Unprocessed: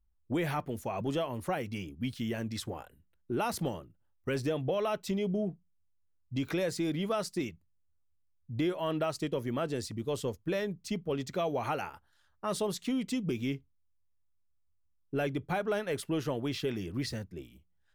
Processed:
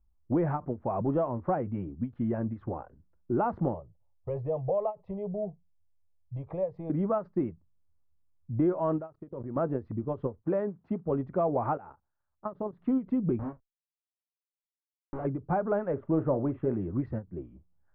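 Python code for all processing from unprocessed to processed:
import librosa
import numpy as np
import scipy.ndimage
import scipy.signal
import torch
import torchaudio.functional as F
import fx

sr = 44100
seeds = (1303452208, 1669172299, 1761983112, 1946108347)

y = fx.chain(x, sr, fx.peak_eq(hz=350.0, db=-12.5, octaves=0.25),
    fx.fixed_phaser(hz=610.0, stages=4), at=(3.74, 6.9))
y = fx.chain(y, sr, fx.high_shelf(hz=11000.0, db=-6.5),
    fx.level_steps(step_db=21),
    fx.transient(attack_db=1, sustain_db=-7), at=(8.98, 9.56))
y = fx.chain(y, sr, fx.block_float(bits=5),
    fx.highpass(hz=150.0, slope=6), at=(10.42, 11.06))
y = fx.chain(y, sr, fx.high_shelf(hz=3000.0, db=-2.5),
    fx.level_steps(step_db=17), at=(11.77, 12.81))
y = fx.chain(y, sr, fx.schmitt(flips_db=-41.5),
    fx.doubler(ms=27.0, db=-6.0), at=(13.39, 15.25))
y = fx.chain(y, sr, fx.moving_average(points=9),
    fx.peak_eq(hz=570.0, db=5.5, octaves=0.22),
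    fx.doubler(ms=44.0, db=-13.5), at=(15.91, 16.74))
y = scipy.signal.sosfilt(scipy.signal.butter(4, 1200.0, 'lowpass', fs=sr, output='sos'), y)
y = fx.notch(y, sr, hz=440.0, q=12.0)
y = fx.end_taper(y, sr, db_per_s=300.0)
y = y * librosa.db_to_amplitude(5.0)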